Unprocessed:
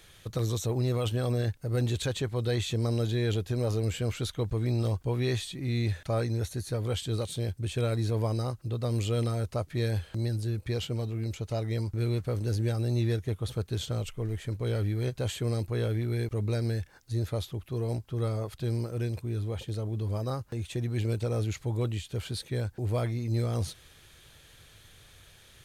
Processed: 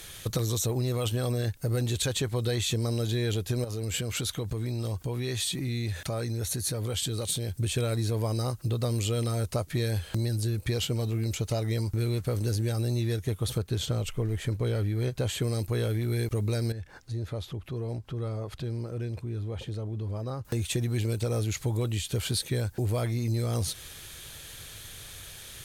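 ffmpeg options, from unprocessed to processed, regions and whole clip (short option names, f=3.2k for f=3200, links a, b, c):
-filter_complex "[0:a]asettb=1/sr,asplit=3[a][b][c];[a]atrim=end=3.644[d];[b]atrim=start=3.64:end=7.56,asetpts=PTS-STARTPTS,afade=t=in:d=0.004:c=qsin,afade=t=out:st=3.916:d=0.004:c=qsin,highpass=54,acompressor=threshold=-36dB:ratio=5:attack=3.2:release=140:knee=1:detection=peak[e];[c]atrim=start=7.556[f];[d][e]acrossfade=d=0.004:c1=hsin:c2=qsin[g];[g][f]acrossfade=d=0.004:c1=qsin:c2=hsin,asettb=1/sr,asplit=3[h][i][j];[h]atrim=end=13.584[k];[i]atrim=start=13.58:end=15.42,asetpts=PTS-STARTPTS,afade=t=in:d=0.004:c=qsin,afade=t=out:st=1.836:d=0.004:c=qsin,highshelf=f=4.1k:g=-8,acompressor=mode=upward:threshold=-41dB:ratio=2.5:attack=3.2:release=140:knee=2.83:detection=peak[l];[j]atrim=start=15.416[m];[k][l]acrossfade=d=0.004:c1=hsin:c2=qsin[n];[n][m]acrossfade=d=0.004:c1=qsin:c2=hsin,asettb=1/sr,asplit=3[o][p][q];[o]atrim=end=16.724[r];[p]atrim=start=16.72:end=20.45,asetpts=PTS-STARTPTS,afade=t=in:d=0.004:c=qsin,afade=t=out:st=3.726:d=0.004:c=qsin,aemphasis=mode=reproduction:type=75fm,acompressor=threshold=-46dB:ratio=2:attack=3.2:release=140:knee=1:detection=peak[s];[q]atrim=start=20.446[t];[r][s]acrossfade=d=0.004:c1=hsin:c2=qsin[u];[u][t]acrossfade=d=0.004:c1=qsin:c2=hsin,aemphasis=mode=production:type=cd,acompressor=threshold=-33dB:ratio=6,volume=8dB"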